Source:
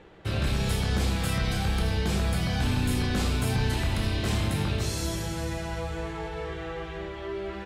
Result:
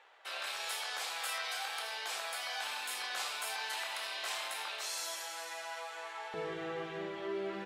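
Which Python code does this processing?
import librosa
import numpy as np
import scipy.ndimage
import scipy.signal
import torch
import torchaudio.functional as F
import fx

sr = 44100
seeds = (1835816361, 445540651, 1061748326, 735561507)

y = fx.highpass(x, sr, hz=fx.steps((0.0, 720.0), (6.34, 170.0)), slope=24)
y = y * 10.0 ** (-3.5 / 20.0)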